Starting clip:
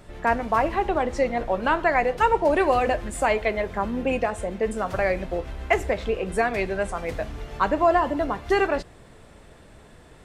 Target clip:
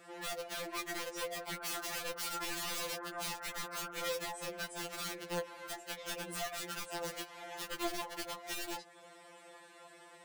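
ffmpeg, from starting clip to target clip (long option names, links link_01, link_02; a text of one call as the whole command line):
ffmpeg -i in.wav -filter_complex "[0:a]highpass=460,aeval=exprs='0.473*(cos(1*acos(clip(val(0)/0.473,-1,1)))-cos(1*PI/2))+0.15*(cos(2*acos(clip(val(0)/0.473,-1,1)))-cos(2*PI/2))+0.015*(cos(3*acos(clip(val(0)/0.473,-1,1)))-cos(3*PI/2))+0.00944*(cos(5*acos(clip(val(0)/0.473,-1,1)))-cos(5*PI/2))+0.00299*(cos(8*acos(clip(val(0)/0.473,-1,1)))-cos(8*PI/2))':channel_layout=same,acompressor=threshold=-33dB:ratio=8,asettb=1/sr,asplit=3[link_01][link_02][link_03];[link_01]atrim=end=1.564[link_04];[link_02]atrim=start=1.56:end=4.08,asetpts=PTS-STARTPTS,afade=type=in:duration=0.004:curve=qsin,afade=type=out:start_time=2.516:duration=0.004:curve=qsin,lowpass=frequency=1400:width_type=q:width=5.5[link_05];[link_03]atrim=start=4.076[link_06];[link_04][link_05]acrossfade=duration=0.004:curve1=hsin:curve2=qsin[link_07];[link_07][link_06]acrossfade=duration=0.004:curve1=qsin:curve2=hsin,aeval=exprs='(mod(37.6*val(0)+1,2)-1)/37.6':channel_layout=same,afftfilt=real='re*2.83*eq(mod(b,8),0)':imag='im*2.83*eq(mod(b,8),0)':win_size=2048:overlap=0.75" out.wav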